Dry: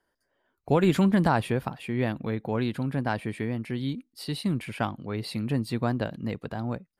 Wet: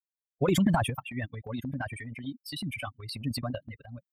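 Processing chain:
spectral dynamics exaggerated over time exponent 3
in parallel at +3 dB: downward compressor 6 to 1, threshold −42 dBFS, peak gain reduction 19.5 dB
on the sum: phase-vocoder stretch with locked phases 0.59×
transient designer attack −1 dB, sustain +11 dB

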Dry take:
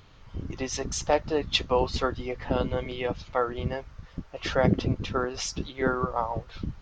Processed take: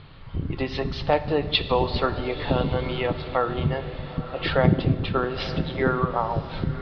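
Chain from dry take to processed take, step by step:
Butterworth low-pass 4,600 Hz 72 dB per octave
parametric band 150 Hz +10 dB 0.23 octaves
feedback delay with all-pass diffusion 964 ms, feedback 43%, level −15 dB
reverb whose tail is shaped and stops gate 490 ms falling, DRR 11.5 dB
in parallel at +1 dB: downward compressor, threshold −31 dBFS, peak gain reduction 16.5 dB

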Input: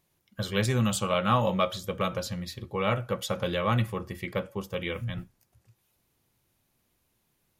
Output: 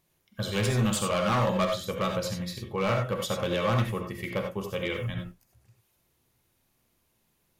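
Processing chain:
gain into a clipping stage and back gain 22 dB
reverb whose tail is shaped and stops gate 110 ms rising, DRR 3 dB

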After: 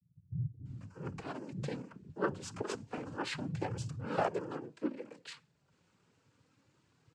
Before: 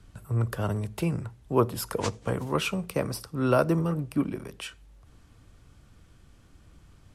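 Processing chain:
cochlear-implant simulation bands 8
flanger 0.29 Hz, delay 1.3 ms, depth 4.2 ms, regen −39%
multiband delay without the direct sound lows, highs 650 ms, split 190 Hz
level −5 dB

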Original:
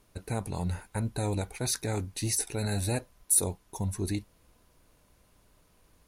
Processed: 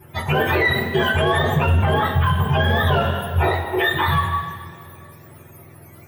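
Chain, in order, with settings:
frequency axis turned over on the octave scale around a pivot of 590 Hz
flat-topped bell 5,100 Hz −14 dB
soft clipping −23.5 dBFS, distortion −24 dB
coupled-rooms reverb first 0.22 s, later 1.9 s, from −18 dB, DRR −10 dB
boost into a limiter +22.5 dB
level −8.5 dB

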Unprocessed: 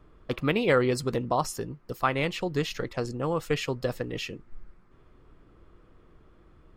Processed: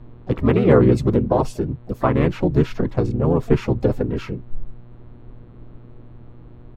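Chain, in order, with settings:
pitch-shifted copies added −12 semitones −4 dB, −3 semitones −1 dB, +7 semitones −18 dB
tilt shelving filter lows +9 dB, about 1,100 Hz
hum with harmonics 120 Hz, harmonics 36, −46 dBFS −9 dB per octave

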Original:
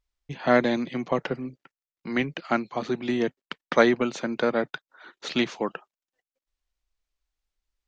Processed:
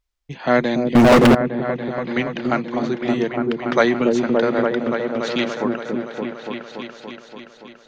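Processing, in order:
echo whose low-pass opens from repeat to repeat 286 ms, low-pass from 400 Hz, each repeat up 1 octave, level 0 dB
0:00.95–0:01.35: leveller curve on the samples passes 5
level +3 dB

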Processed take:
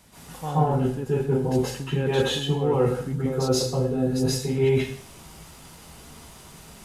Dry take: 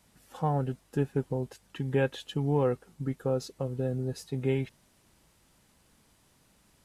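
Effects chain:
reversed playback
downward compressor 10 to 1, threshold −37 dBFS, peak gain reduction 16 dB
reversed playback
dense smooth reverb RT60 0.51 s, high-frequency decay 1×, pre-delay 115 ms, DRR −10 dB
level +9 dB

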